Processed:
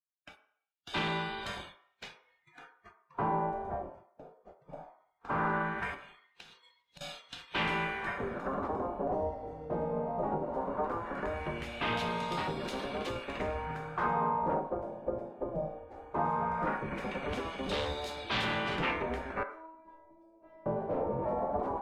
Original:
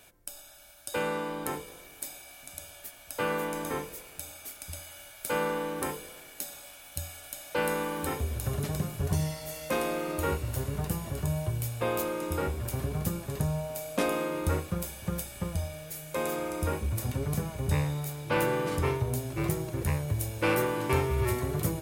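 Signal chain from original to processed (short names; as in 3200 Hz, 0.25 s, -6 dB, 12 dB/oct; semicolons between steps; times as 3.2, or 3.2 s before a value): spectral gate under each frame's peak -10 dB weak; expander -44 dBFS; spectral noise reduction 26 dB; dynamic EQ 2500 Hz, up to -6 dB, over -51 dBFS, Q 1; 5.94–7.01 compressor 12:1, threshold -52 dBFS, peak gain reduction 20.5 dB; wavefolder -32 dBFS; 19.43–20.66 metallic resonator 320 Hz, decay 0.78 s, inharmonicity 0.002; LFO low-pass sine 0.18 Hz 590–3800 Hz; on a send: reverb RT60 0.60 s, pre-delay 3 ms, DRR 6.5 dB; on the sum: gain +4 dB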